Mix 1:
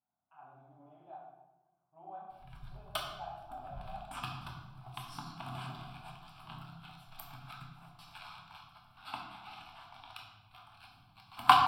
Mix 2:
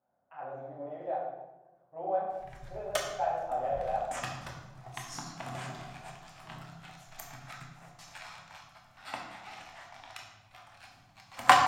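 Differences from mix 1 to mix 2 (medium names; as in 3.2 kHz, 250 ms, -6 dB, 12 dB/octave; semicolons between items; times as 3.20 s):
speech +9.0 dB; master: remove static phaser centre 1.9 kHz, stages 6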